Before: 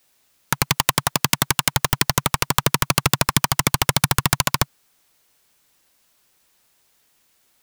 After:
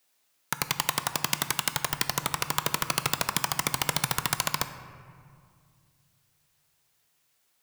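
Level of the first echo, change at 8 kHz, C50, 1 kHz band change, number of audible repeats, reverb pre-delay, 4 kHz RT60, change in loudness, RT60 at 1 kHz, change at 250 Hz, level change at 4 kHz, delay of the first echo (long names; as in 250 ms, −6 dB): no echo audible, −8.0 dB, 11.0 dB, −8.0 dB, no echo audible, 3 ms, 1.2 s, −8.0 dB, 2.0 s, −11.5 dB, −8.0 dB, no echo audible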